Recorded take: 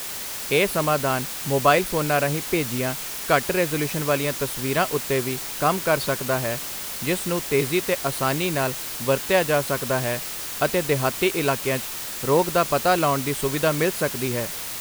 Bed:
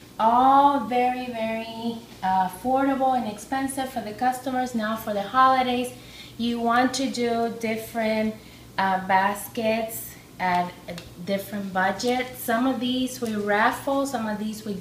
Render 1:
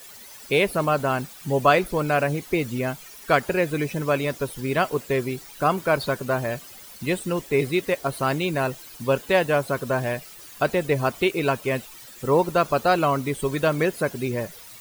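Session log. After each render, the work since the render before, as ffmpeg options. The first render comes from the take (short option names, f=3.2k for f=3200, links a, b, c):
-af "afftdn=nr=15:nf=-32"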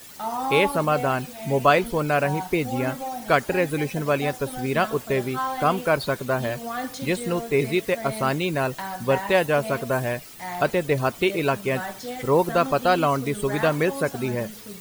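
-filter_complex "[1:a]volume=-10dB[a];[0:a][a]amix=inputs=2:normalize=0"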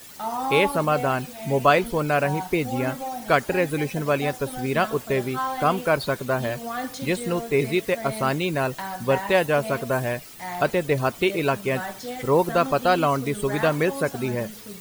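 -af anull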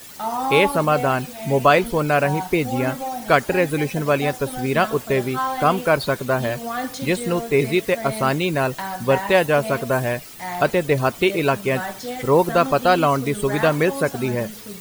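-af "volume=3.5dB,alimiter=limit=-2dB:level=0:latency=1"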